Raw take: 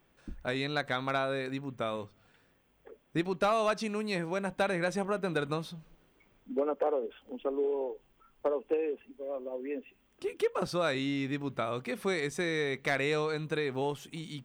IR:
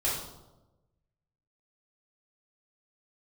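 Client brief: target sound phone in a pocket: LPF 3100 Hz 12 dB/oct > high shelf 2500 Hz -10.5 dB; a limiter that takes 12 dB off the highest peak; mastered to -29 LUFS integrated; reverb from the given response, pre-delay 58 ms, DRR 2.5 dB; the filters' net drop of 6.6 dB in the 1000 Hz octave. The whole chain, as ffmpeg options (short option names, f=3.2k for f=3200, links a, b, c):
-filter_complex "[0:a]equalizer=f=1k:t=o:g=-7.5,alimiter=level_in=7.5dB:limit=-24dB:level=0:latency=1,volume=-7.5dB,asplit=2[a][b];[1:a]atrim=start_sample=2205,adelay=58[c];[b][c]afir=irnorm=-1:irlink=0,volume=-10.5dB[d];[a][d]amix=inputs=2:normalize=0,lowpass=3.1k,highshelf=f=2.5k:g=-10.5,volume=10.5dB"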